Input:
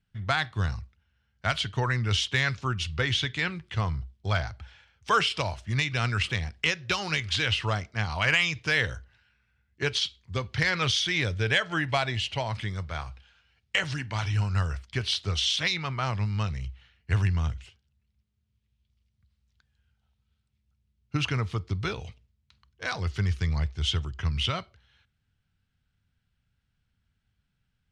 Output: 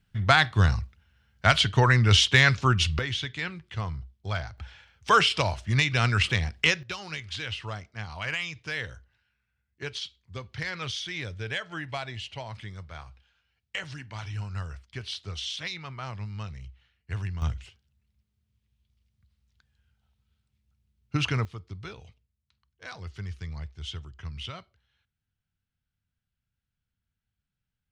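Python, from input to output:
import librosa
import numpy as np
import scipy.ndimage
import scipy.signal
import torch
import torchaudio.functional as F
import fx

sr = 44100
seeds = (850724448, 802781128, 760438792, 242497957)

y = fx.gain(x, sr, db=fx.steps((0.0, 7.0), (2.99, -4.0), (4.58, 3.5), (6.83, -8.0), (17.42, 1.0), (21.45, -10.0)))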